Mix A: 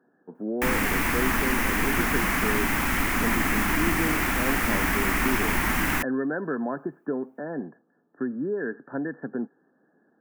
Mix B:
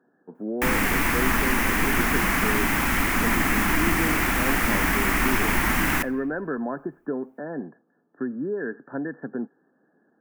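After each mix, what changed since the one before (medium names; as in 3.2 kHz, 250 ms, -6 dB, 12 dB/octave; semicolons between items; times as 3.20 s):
reverb: on, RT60 1.1 s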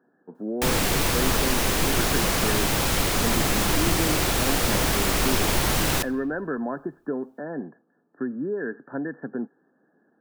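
background: add graphic EQ 125/250/500/1000/2000/4000/8000 Hz +8/-9/+11/-3/-10/+12/+4 dB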